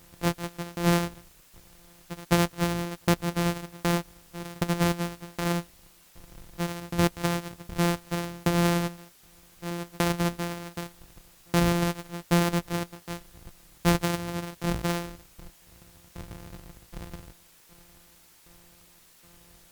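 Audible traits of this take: a buzz of ramps at a fixed pitch in blocks of 256 samples; tremolo saw down 1.3 Hz, depth 100%; a quantiser's noise floor 10-bit, dither triangular; MP3

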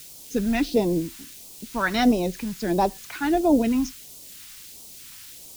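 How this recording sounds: a quantiser's noise floor 8-bit, dither triangular; phasing stages 2, 1.5 Hz, lowest notch 500–1600 Hz

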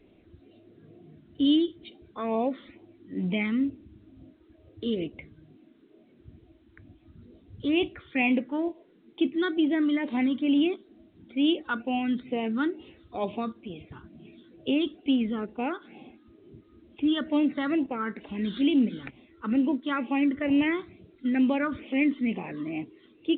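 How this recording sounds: phasing stages 8, 2.2 Hz, lowest notch 730–1500 Hz; A-law

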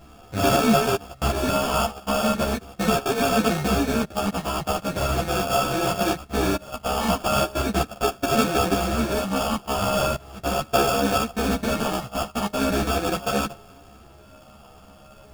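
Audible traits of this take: a buzz of ramps at a fixed pitch in blocks of 64 samples; phasing stages 8, 0.39 Hz, lowest notch 510–1800 Hz; aliases and images of a low sample rate 2000 Hz, jitter 0%; a shimmering, thickened sound

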